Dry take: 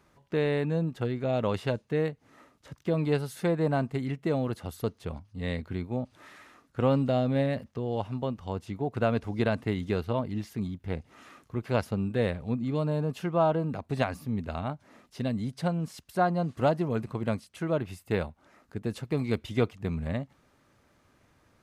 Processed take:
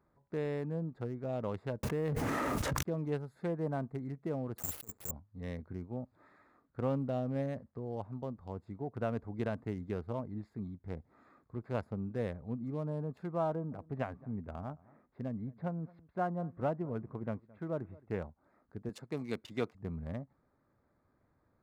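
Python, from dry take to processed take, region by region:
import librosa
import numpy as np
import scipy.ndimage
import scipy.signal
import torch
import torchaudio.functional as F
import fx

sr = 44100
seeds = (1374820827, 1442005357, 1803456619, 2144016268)

y = fx.chain(x, sr, fx.law_mismatch(coded='mu'),
    fx.env_flatten(amount_pct=100), at=(1.83, 2.83))
y = fx.chain(y, sr, fx.block_float(bits=3),
    fx.over_compress(threshold_db=-36.0, ratio=-0.5),
    fx.resample_bad(factor=6, down='none', up='zero_stuff'), at=(4.58, 5.11))
y = fx.chain(y, sr, fx.lowpass(hz=2900.0, slope=24),
    fx.echo_single(ms=218, db=-22.5), at=(13.5, 18.22))
y = fx.chain(y, sr, fx.highpass(hz=160.0, slope=12),
    fx.peak_eq(hz=5200.0, db=10.0, octaves=2.5), at=(18.89, 19.75))
y = fx.wiener(y, sr, points=15)
y = fx.dynamic_eq(y, sr, hz=3800.0, q=0.83, threshold_db=-53.0, ratio=4.0, max_db=-6)
y = y * 10.0 ** (-8.5 / 20.0)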